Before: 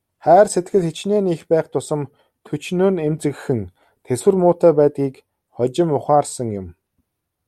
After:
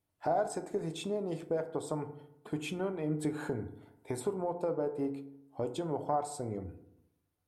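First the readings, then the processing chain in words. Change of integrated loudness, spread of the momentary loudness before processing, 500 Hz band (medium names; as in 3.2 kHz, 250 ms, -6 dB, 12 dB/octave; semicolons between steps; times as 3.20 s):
-18.0 dB, 12 LU, -18.5 dB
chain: compression 3:1, threshold -28 dBFS, peak gain reduction 15.5 dB; FDN reverb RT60 0.85 s, low-frequency decay 1.1×, high-frequency decay 0.4×, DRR 7.5 dB; dynamic bell 1.1 kHz, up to +5 dB, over -44 dBFS, Q 1.1; trim -8 dB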